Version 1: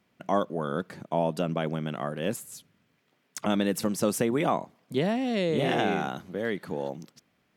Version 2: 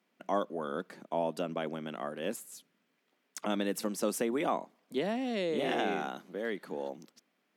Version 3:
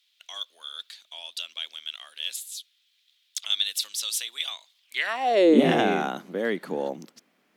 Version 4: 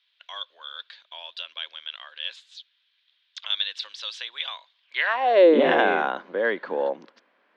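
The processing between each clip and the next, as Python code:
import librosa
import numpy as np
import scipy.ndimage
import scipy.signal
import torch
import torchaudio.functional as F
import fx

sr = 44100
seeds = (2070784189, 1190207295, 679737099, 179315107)

y1 = scipy.signal.sosfilt(scipy.signal.butter(4, 210.0, 'highpass', fs=sr, output='sos'), x)
y1 = y1 * librosa.db_to_amplitude(-5.0)
y2 = fx.filter_sweep_highpass(y1, sr, from_hz=3600.0, to_hz=61.0, start_s=4.81, end_s=5.98, q=4.5)
y2 = y2 * librosa.db_to_amplitude(8.5)
y3 = fx.cabinet(y2, sr, low_hz=330.0, low_slope=12, high_hz=4000.0, hz=(540.0, 1000.0, 1600.0), db=(7, 9, 8))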